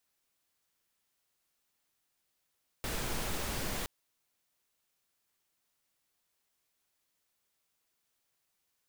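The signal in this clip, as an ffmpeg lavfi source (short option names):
-f lavfi -i "anoisesrc=c=pink:a=0.0861:d=1.02:r=44100:seed=1"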